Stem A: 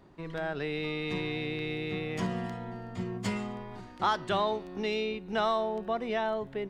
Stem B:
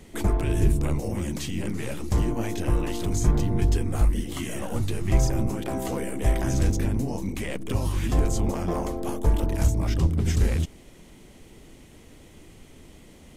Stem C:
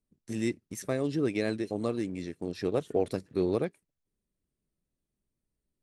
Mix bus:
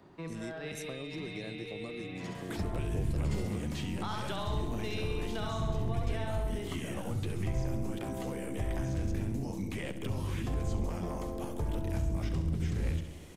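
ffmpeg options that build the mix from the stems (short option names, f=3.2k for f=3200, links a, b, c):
-filter_complex "[0:a]volume=0.5dB,asplit=2[a][b];[b]volume=-9dB[c];[1:a]acrossover=split=3600[d][e];[e]acompressor=threshold=-49dB:ratio=4:attack=1:release=60[f];[d][f]amix=inputs=2:normalize=0,adelay=2350,volume=-1dB,asplit=2[g][h];[h]volume=-14.5dB[i];[2:a]acompressor=threshold=-32dB:ratio=2.5,volume=-5dB,asplit=2[j][k];[k]apad=whole_len=295064[l];[a][l]sidechaincompress=threshold=-57dB:ratio=4:attack=5.6:release=148[m];[m][g]amix=inputs=2:normalize=0,highpass=79,acompressor=threshold=-30dB:ratio=4,volume=0dB[n];[c][i]amix=inputs=2:normalize=0,aecho=0:1:67|134|201|268|335|402|469|536|603|670:1|0.6|0.36|0.216|0.13|0.0778|0.0467|0.028|0.0168|0.0101[o];[j][n][o]amix=inputs=3:normalize=0,acrossover=split=170|3000[p][q][r];[q]acompressor=threshold=-41dB:ratio=2[s];[p][s][r]amix=inputs=3:normalize=0"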